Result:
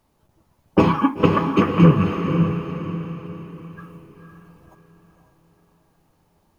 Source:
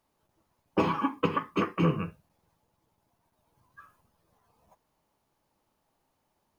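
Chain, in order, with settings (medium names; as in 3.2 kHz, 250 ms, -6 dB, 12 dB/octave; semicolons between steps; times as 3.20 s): bass shelf 260 Hz +9.5 dB; on a send: echo that smears into a reverb 513 ms, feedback 42%, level -5.5 dB; on the sum: trim +7 dB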